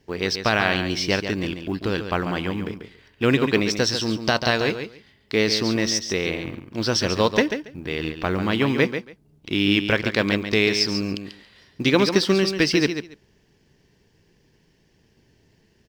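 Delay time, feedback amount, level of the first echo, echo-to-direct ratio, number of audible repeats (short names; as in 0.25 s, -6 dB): 0.14 s, 16%, -8.5 dB, -8.5 dB, 2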